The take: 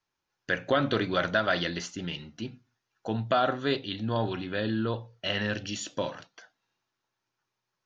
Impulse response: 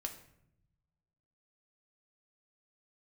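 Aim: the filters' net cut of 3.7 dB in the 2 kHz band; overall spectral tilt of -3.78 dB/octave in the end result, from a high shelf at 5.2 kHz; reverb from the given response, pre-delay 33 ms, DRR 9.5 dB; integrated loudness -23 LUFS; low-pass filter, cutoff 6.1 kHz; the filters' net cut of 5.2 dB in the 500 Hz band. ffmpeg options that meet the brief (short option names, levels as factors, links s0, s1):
-filter_complex "[0:a]lowpass=6100,equalizer=f=500:t=o:g=-6.5,equalizer=f=2000:t=o:g=-5,highshelf=f=5200:g=3,asplit=2[s0][s1];[1:a]atrim=start_sample=2205,adelay=33[s2];[s1][s2]afir=irnorm=-1:irlink=0,volume=0.398[s3];[s0][s3]amix=inputs=2:normalize=0,volume=2.82"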